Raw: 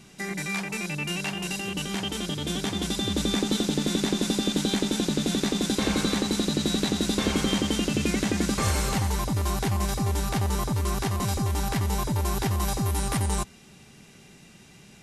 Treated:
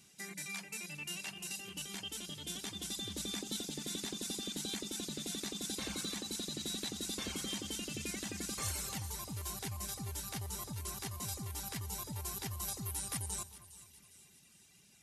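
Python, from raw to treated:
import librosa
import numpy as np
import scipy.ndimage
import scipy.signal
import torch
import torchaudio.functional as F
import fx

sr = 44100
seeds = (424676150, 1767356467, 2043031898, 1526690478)

y = scipy.signal.sosfilt(scipy.signal.butter(2, 56.0, 'highpass', fs=sr, output='sos'), x)
y = librosa.effects.preemphasis(y, coef=0.9, zi=[0.0])
y = fx.dereverb_blind(y, sr, rt60_s=1.1)
y = fx.tilt_eq(y, sr, slope=-1.5)
y = fx.echo_split(y, sr, split_hz=2400.0, low_ms=217, high_ms=408, feedback_pct=52, wet_db=-15.5)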